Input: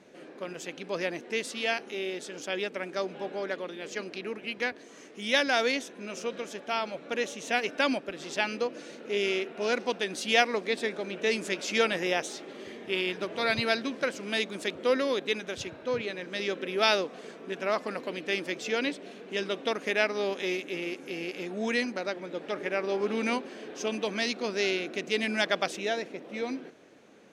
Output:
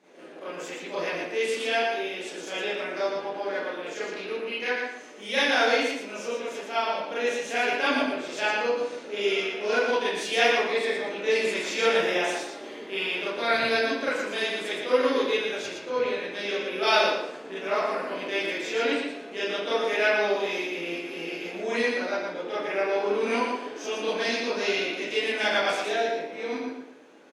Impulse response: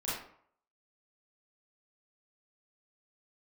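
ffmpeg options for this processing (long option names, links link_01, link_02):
-filter_complex "[0:a]highpass=280,aecho=1:1:116|232|348:0.562|0.146|0.038[link_01];[1:a]atrim=start_sample=2205[link_02];[link_01][link_02]afir=irnorm=-1:irlink=0,volume=-1.5dB"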